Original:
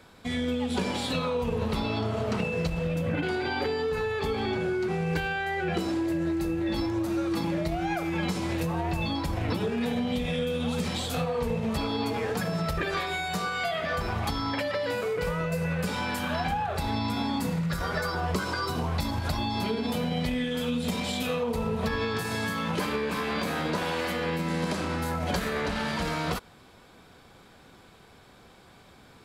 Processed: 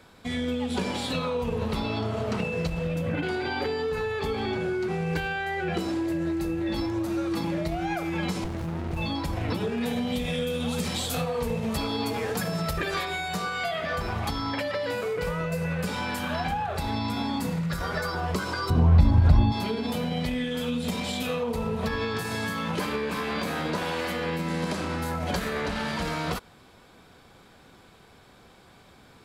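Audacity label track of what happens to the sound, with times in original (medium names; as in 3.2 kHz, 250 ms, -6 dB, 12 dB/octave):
8.440000	8.970000	sliding maximum over 65 samples
9.850000	13.050000	treble shelf 5.8 kHz +8 dB
18.700000	19.520000	RIAA curve playback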